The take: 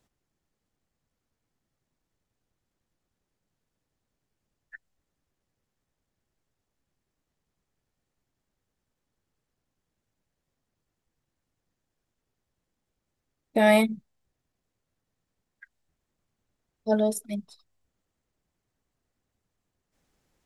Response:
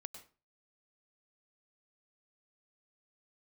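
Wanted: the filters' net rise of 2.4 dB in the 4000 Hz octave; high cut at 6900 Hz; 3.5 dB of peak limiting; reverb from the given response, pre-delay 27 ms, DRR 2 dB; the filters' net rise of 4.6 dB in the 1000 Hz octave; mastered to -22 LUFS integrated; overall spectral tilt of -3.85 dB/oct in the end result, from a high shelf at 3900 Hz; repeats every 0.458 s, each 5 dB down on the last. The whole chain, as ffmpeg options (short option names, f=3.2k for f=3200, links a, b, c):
-filter_complex "[0:a]lowpass=6.9k,equalizer=f=1k:t=o:g=6,highshelf=f=3.9k:g=-7,equalizer=f=4k:t=o:g=6.5,alimiter=limit=-11dB:level=0:latency=1,aecho=1:1:458|916|1374|1832|2290|2748|3206:0.562|0.315|0.176|0.0988|0.0553|0.031|0.0173,asplit=2[a][b];[1:a]atrim=start_sample=2205,adelay=27[c];[b][c]afir=irnorm=-1:irlink=0,volume=2.5dB[d];[a][d]amix=inputs=2:normalize=0,volume=2.5dB"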